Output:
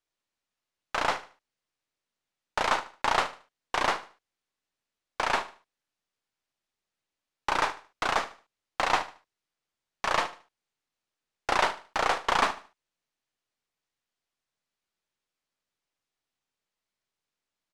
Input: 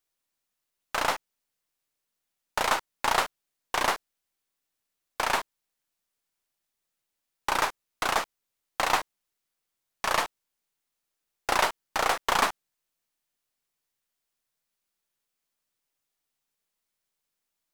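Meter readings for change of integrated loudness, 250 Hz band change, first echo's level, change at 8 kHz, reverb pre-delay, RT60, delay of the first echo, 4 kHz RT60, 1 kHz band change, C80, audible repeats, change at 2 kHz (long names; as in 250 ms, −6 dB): −0.5 dB, 0.0 dB, −14.5 dB, −6.0 dB, no reverb audible, no reverb audible, 75 ms, no reverb audible, 0.0 dB, no reverb audible, 2, −0.5 dB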